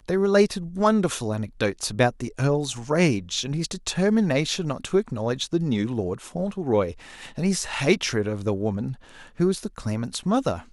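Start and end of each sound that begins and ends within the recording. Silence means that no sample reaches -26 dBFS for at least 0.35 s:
7.38–8.92

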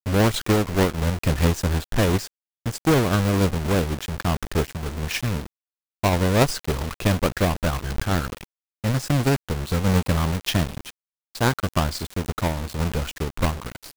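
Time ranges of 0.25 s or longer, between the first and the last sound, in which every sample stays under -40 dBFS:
2.27–2.66
5.46–6.03
8.44–8.84
10.9–11.35

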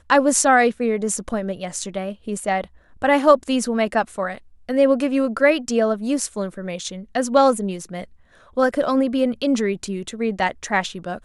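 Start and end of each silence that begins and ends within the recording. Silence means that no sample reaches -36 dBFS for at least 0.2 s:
2.65–3.02
4.38–4.69
8.04–8.57

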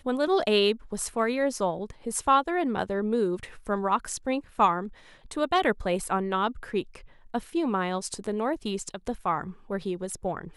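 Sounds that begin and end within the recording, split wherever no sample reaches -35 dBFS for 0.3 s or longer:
5.31–6.96

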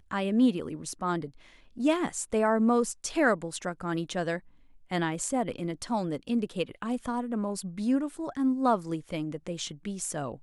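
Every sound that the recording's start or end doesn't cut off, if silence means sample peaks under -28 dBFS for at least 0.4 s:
1.8–4.37

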